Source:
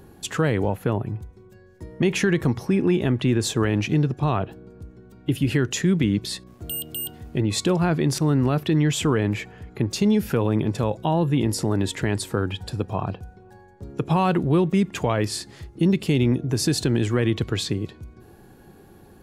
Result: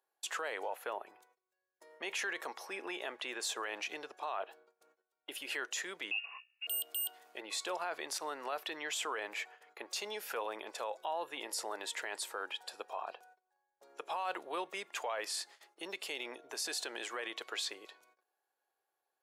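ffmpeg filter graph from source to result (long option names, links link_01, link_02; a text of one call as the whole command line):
ffmpeg -i in.wav -filter_complex "[0:a]asettb=1/sr,asplit=3[link_01][link_02][link_03];[link_01]atrim=end=6.114[link_04];[link_02]atrim=start=6.11:end=6.67,asetpts=PTS-STARTPTS,afade=type=in:duration=0.004:curve=qsin,afade=type=out:start_time=0.556:duration=0.004:curve=qsin,aecho=1:1:3.3:0.32,atrim=end_sample=24696,lowpass=frequency=2500:width_type=q:width=0.5098,lowpass=frequency=2500:width_type=q:width=0.6013,lowpass=frequency=2500:width_type=q:width=0.9,lowpass=frequency=2500:width_type=q:width=2.563,afreqshift=-2900[link_05];[link_03]atrim=start=6.666[link_06];[link_04][link_05]acrossfade=duration=0.004:curve1=hsin:curve2=qsin[link_07];[link_07][link_06]acrossfade=duration=0.004:curve1=qsin:curve2=hsin,agate=range=-23dB:threshold=-42dB:ratio=16:detection=peak,highpass=frequency=600:width=0.5412,highpass=frequency=600:width=1.3066,alimiter=limit=-22dB:level=0:latency=1:release=15,volume=-6dB" out.wav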